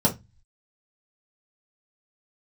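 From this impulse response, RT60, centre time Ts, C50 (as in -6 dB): 0.20 s, 12 ms, 14.5 dB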